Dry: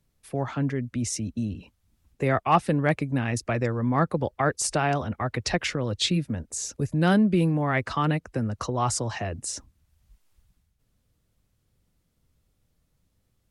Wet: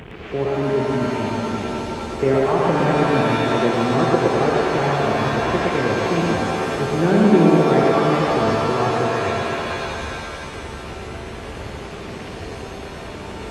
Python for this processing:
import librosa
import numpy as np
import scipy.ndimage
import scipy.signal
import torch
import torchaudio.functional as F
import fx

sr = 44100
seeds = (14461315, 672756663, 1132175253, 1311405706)

p1 = fx.delta_mod(x, sr, bps=16000, step_db=-30.5)
p2 = scipy.signal.sosfilt(scipy.signal.butter(2, 47.0, 'highpass', fs=sr, output='sos'), p1)
p3 = fx.peak_eq(p2, sr, hz=390.0, db=11.5, octaves=0.55)
p4 = p3 + fx.echo_single(p3, sr, ms=113, db=-3.0, dry=0)
p5 = fx.rev_shimmer(p4, sr, seeds[0], rt60_s=3.2, semitones=7, shimmer_db=-2, drr_db=1.0)
y = F.gain(torch.from_numpy(p5), -1.0).numpy()